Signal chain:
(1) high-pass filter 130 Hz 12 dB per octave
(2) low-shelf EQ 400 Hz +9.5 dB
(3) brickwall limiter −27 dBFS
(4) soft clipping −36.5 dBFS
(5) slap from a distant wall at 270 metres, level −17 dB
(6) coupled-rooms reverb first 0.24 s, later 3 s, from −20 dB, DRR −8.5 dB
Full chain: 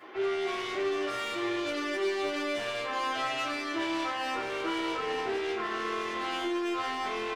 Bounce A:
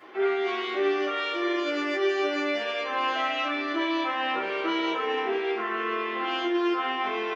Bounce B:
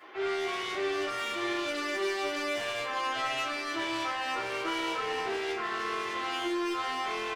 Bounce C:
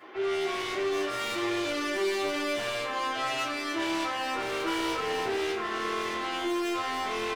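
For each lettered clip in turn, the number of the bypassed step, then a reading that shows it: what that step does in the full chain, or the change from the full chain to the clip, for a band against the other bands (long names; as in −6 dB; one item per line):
4, distortion level −11 dB
2, 250 Hz band −3.5 dB
3, average gain reduction 4.5 dB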